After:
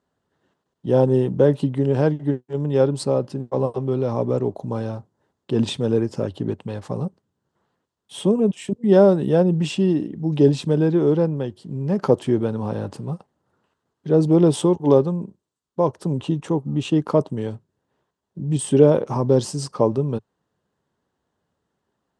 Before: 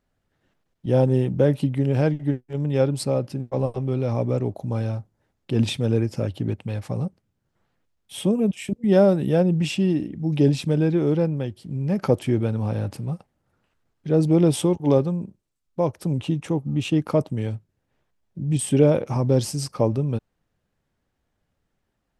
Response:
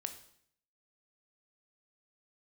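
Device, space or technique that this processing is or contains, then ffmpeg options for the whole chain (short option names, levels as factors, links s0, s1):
car door speaker: -af "highpass=100,equalizer=f=110:t=q:w=4:g=-4,equalizer=f=410:t=q:w=4:g=5,equalizer=f=1000:t=q:w=4:g=6,equalizer=f=2300:t=q:w=4:g=-9,equalizer=f=5400:t=q:w=4:g=-3,lowpass=f=8900:w=0.5412,lowpass=f=8900:w=1.3066,volume=1.19"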